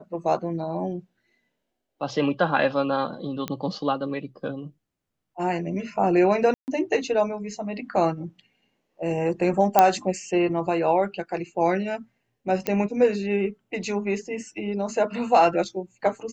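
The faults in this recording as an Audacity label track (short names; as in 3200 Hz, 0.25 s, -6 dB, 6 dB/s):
3.480000	3.480000	pop -14 dBFS
6.540000	6.680000	gap 0.139 s
9.790000	9.790000	pop -2 dBFS
12.670000	12.670000	pop -9 dBFS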